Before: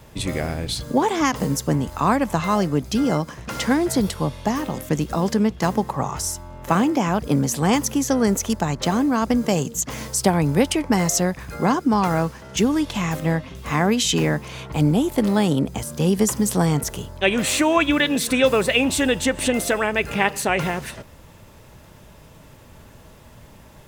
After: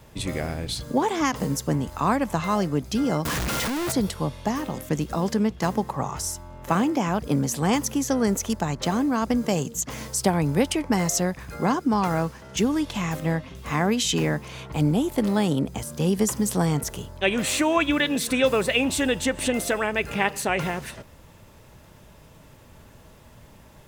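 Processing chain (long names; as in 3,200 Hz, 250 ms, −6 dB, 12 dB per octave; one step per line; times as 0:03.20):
0:03.25–0:03.92: sign of each sample alone
level −3.5 dB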